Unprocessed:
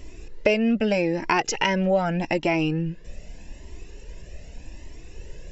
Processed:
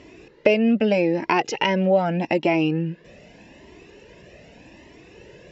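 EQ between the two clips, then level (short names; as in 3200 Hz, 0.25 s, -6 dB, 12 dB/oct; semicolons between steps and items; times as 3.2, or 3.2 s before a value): BPF 170–3700 Hz; dynamic EQ 1500 Hz, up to -6 dB, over -39 dBFS, Q 1.2; +4.0 dB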